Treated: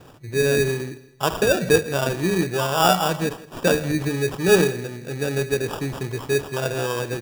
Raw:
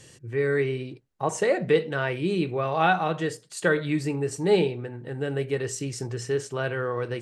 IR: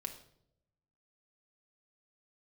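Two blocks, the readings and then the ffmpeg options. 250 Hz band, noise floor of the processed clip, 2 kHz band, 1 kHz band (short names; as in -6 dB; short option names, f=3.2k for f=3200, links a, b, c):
+4.0 dB, -47 dBFS, +4.0 dB, +3.5 dB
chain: -filter_complex "[0:a]asplit=2[a][b];[1:a]atrim=start_sample=2205[c];[b][c]afir=irnorm=-1:irlink=0,volume=-9.5dB[d];[a][d]amix=inputs=2:normalize=0,acrusher=samples=21:mix=1:aa=0.000001,asplit=2[e][f];[f]aecho=0:1:164|328|492:0.106|0.036|0.0122[g];[e][g]amix=inputs=2:normalize=0,volume=2dB"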